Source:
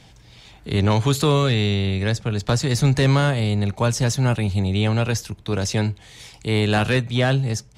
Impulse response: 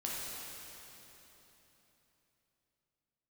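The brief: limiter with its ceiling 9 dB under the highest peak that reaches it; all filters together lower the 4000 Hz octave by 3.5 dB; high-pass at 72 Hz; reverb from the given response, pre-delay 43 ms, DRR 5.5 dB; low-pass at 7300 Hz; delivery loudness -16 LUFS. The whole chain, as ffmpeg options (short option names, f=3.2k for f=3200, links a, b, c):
-filter_complex "[0:a]highpass=72,lowpass=7.3k,equalizer=f=4k:t=o:g=-4,alimiter=limit=-17dB:level=0:latency=1,asplit=2[a][b];[1:a]atrim=start_sample=2205,adelay=43[c];[b][c]afir=irnorm=-1:irlink=0,volume=-8.5dB[d];[a][d]amix=inputs=2:normalize=0,volume=8.5dB"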